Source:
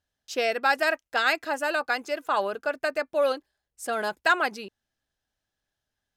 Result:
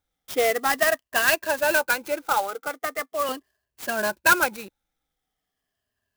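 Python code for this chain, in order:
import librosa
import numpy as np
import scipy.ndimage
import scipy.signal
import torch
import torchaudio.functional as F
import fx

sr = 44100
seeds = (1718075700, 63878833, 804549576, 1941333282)

y = fx.spec_ripple(x, sr, per_octave=1.4, drift_hz=-0.41, depth_db=16)
y = fx.highpass(y, sr, hz=380.0, slope=12, at=(2.24, 3.29))
y = fx.clock_jitter(y, sr, seeds[0], jitter_ms=0.041)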